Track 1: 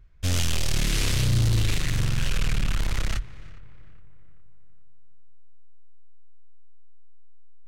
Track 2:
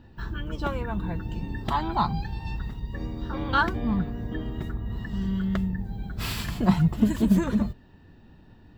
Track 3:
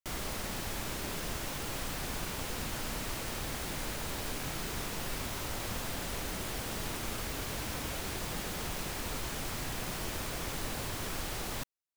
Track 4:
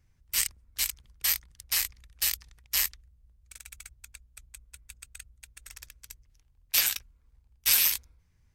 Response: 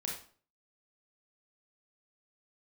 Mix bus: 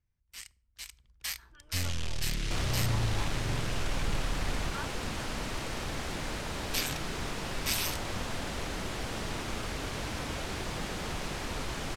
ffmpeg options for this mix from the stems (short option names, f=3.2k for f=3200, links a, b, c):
-filter_complex "[0:a]adelay=1500,volume=-9dB[a];[1:a]highpass=570,adelay=1200,volume=-18dB[b];[2:a]adelay=2450,volume=2.5dB[c];[3:a]volume=-5.5dB,afade=t=in:st=0.7:d=0.54:silence=0.354813,asplit=2[d][e];[e]volume=-22.5dB[f];[4:a]atrim=start_sample=2205[g];[f][g]afir=irnorm=-1:irlink=0[h];[a][b][c][d][h]amix=inputs=5:normalize=0,adynamicsmooth=sensitivity=1.5:basefreq=7.7k"